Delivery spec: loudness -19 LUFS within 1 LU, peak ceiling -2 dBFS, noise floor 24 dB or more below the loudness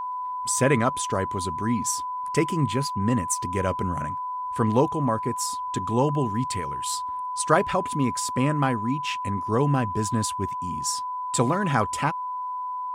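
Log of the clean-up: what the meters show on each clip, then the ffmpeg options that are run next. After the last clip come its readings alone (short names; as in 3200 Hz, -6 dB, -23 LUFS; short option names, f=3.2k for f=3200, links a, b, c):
steady tone 1000 Hz; tone level -28 dBFS; loudness -25.5 LUFS; peak -5.5 dBFS; loudness target -19.0 LUFS
-> -af "bandreject=f=1k:w=30"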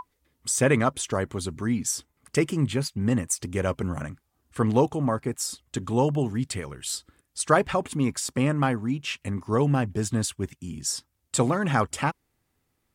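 steady tone none; loudness -26.5 LUFS; peak -6.0 dBFS; loudness target -19.0 LUFS
-> -af "volume=7.5dB,alimiter=limit=-2dB:level=0:latency=1"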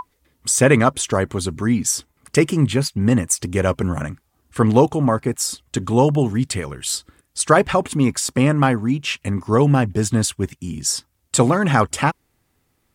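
loudness -19.0 LUFS; peak -2.0 dBFS; noise floor -68 dBFS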